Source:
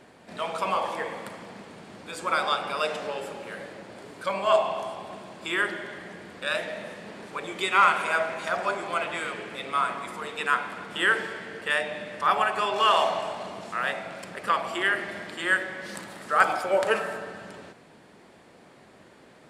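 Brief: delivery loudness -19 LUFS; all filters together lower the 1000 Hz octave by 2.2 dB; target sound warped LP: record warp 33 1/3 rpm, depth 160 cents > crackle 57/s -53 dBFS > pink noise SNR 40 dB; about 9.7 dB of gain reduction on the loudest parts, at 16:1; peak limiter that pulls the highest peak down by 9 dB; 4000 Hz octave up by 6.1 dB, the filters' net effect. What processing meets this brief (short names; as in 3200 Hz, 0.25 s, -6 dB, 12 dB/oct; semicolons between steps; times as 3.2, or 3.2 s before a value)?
bell 1000 Hz -3.5 dB; bell 4000 Hz +8.5 dB; compressor 16:1, threshold -25 dBFS; limiter -21 dBFS; record warp 33 1/3 rpm, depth 160 cents; crackle 57/s -53 dBFS; pink noise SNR 40 dB; gain +14 dB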